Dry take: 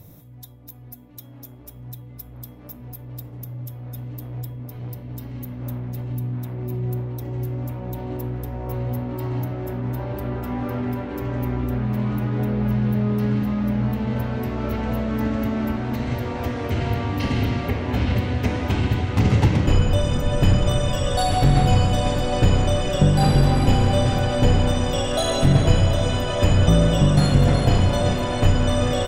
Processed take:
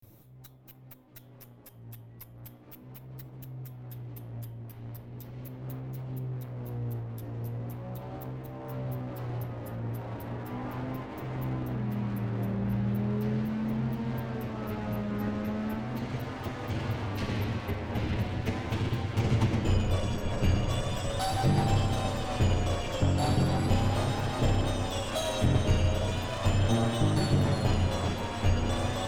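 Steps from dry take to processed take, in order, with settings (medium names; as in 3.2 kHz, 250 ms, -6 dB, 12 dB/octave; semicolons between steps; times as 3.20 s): comb filter that takes the minimum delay 9.2 ms; vibrato 0.38 Hz 97 cents; trim -8 dB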